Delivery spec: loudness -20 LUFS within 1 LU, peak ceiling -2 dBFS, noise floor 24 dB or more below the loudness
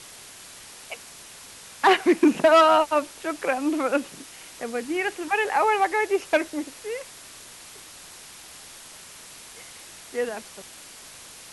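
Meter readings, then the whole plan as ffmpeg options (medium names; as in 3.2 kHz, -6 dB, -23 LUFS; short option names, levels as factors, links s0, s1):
noise floor -45 dBFS; noise floor target -47 dBFS; loudness -22.5 LUFS; peak level -8.0 dBFS; loudness target -20.0 LUFS
-> -af "afftdn=nr=6:nf=-45"
-af "volume=1.33"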